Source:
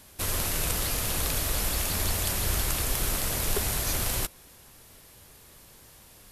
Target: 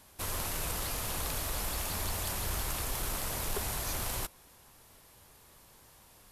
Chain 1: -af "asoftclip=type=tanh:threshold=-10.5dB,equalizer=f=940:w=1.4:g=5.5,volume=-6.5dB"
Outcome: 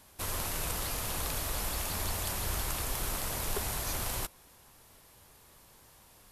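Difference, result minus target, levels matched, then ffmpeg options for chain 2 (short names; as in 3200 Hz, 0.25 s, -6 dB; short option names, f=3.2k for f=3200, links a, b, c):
soft clip: distortion -11 dB
-af "asoftclip=type=tanh:threshold=-17.5dB,equalizer=f=940:w=1.4:g=5.5,volume=-6.5dB"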